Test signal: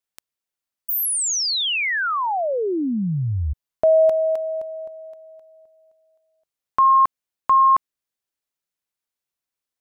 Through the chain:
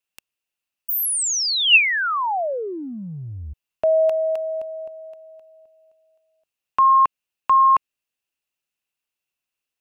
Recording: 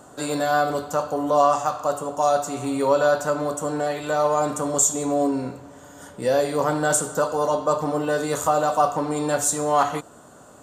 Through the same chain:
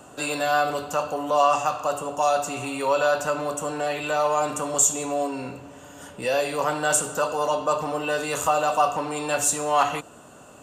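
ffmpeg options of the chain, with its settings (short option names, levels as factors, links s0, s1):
-filter_complex "[0:a]equalizer=f=2700:t=o:w=0.25:g=13.5,acrossover=split=560|940[s0][s1][s2];[s0]acompressor=threshold=0.0251:ratio=6:attack=2.7:release=27[s3];[s3][s1][s2]amix=inputs=3:normalize=0"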